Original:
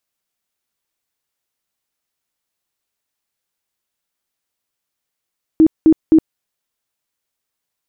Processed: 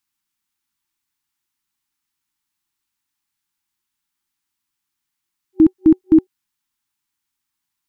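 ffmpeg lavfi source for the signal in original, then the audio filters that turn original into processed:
-f lavfi -i "aevalsrc='0.562*sin(2*PI*318*mod(t,0.26))*lt(mod(t,0.26),21/318)':d=0.78:s=44100"
-af "afftfilt=real='re*(1-between(b*sr/4096,370,790))':imag='im*(1-between(b*sr/4096,370,790))':win_size=4096:overlap=0.75"

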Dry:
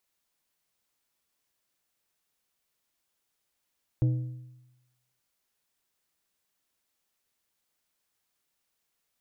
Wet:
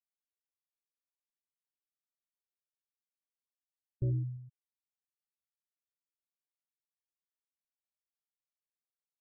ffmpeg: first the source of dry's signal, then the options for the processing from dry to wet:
-f lavfi -i "aevalsrc='0.112*pow(10,-3*t/1.01)*sin(2*PI*125*t)+0.0335*pow(10,-3*t/0.767)*sin(2*PI*312.5*t)+0.01*pow(10,-3*t/0.666)*sin(2*PI*500*t)+0.00299*pow(10,-3*t/0.623)*sin(2*PI*625*t)+0.000891*pow(10,-3*t/0.576)*sin(2*PI*812.5*t)':d=1.18:s=44100"
-af "asoftclip=type=hard:threshold=-28dB,afftfilt=real='re*gte(hypot(re,im),0.0447)':imag='im*gte(hypot(re,im),0.0447)':win_size=1024:overlap=0.75"

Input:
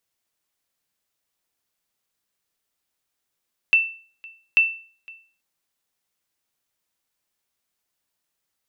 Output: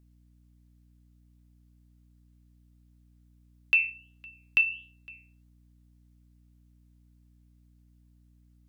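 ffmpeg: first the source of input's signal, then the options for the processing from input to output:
-f lavfi -i "aevalsrc='0.355*(sin(2*PI*2670*mod(t,0.84))*exp(-6.91*mod(t,0.84)/0.42)+0.0562*sin(2*PI*2670*max(mod(t,0.84)-0.51,0))*exp(-6.91*max(mod(t,0.84)-0.51,0)/0.42))':d=1.68:s=44100"
-af "flanger=delay=4.9:depth=7.7:regen=63:speed=1.4:shape=sinusoidal,aeval=exprs='val(0)+0.00112*(sin(2*PI*60*n/s)+sin(2*PI*2*60*n/s)/2+sin(2*PI*3*60*n/s)/3+sin(2*PI*4*60*n/s)/4+sin(2*PI*5*60*n/s)/5)':c=same"

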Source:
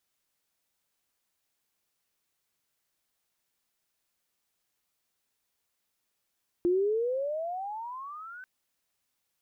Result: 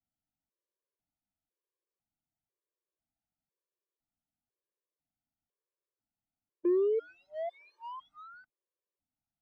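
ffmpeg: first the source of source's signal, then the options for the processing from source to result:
-f lavfi -i "aevalsrc='pow(10,(-21.5-20.5*t/1.79)/20)*sin(2*PI*343*1.79/(26*log(2)/12)*(exp(26*log(2)/12*t/1.79)-1))':d=1.79:s=44100"
-filter_complex "[0:a]acrossover=split=150|680[a][b][c];[c]acrusher=bits=5:mode=log:mix=0:aa=0.000001[d];[a][b][d]amix=inputs=3:normalize=0,adynamicsmooth=sensitivity=3.5:basefreq=670,afftfilt=real='re*gt(sin(2*PI*1*pts/sr)*(1-2*mod(floor(b*sr/1024/310),2)),0)':imag='im*gt(sin(2*PI*1*pts/sr)*(1-2*mod(floor(b*sr/1024/310),2)),0)':win_size=1024:overlap=0.75"

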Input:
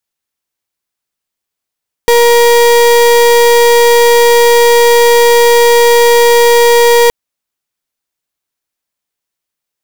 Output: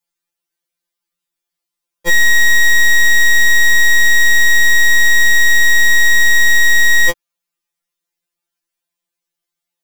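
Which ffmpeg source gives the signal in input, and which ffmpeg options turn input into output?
-f lavfi -i "aevalsrc='0.501*(2*lt(mod(473*t,1),0.35)-1)':d=5.02:s=44100"
-af "afftfilt=real='re*2.83*eq(mod(b,8),0)':imag='im*2.83*eq(mod(b,8),0)':win_size=2048:overlap=0.75"

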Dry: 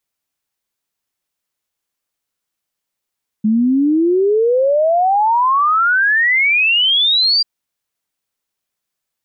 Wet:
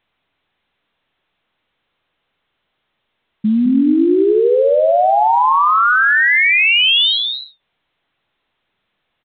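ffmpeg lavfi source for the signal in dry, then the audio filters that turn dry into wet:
-f lavfi -i "aevalsrc='0.299*clip(min(t,3.99-t)/0.01,0,1)*sin(2*PI*210*3.99/log(4800/210)*(exp(log(4800/210)*t/3.99)-1))':d=3.99:s=44100"
-filter_complex "[0:a]asplit=2[a][b];[b]aecho=0:1:209.9|253.6:0.501|0.251[c];[a][c]amix=inputs=2:normalize=0" -ar 8000 -c:a pcm_alaw

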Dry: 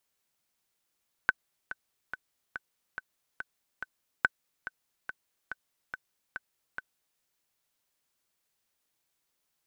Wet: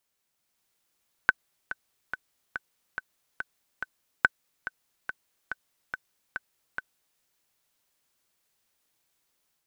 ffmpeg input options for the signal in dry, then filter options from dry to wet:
-f lavfi -i "aevalsrc='pow(10,(-9-14*gte(mod(t,7*60/142),60/142))/20)*sin(2*PI*1520*mod(t,60/142))*exp(-6.91*mod(t,60/142)/0.03)':d=5.91:s=44100"
-af "dynaudnorm=f=340:g=3:m=4.5dB"

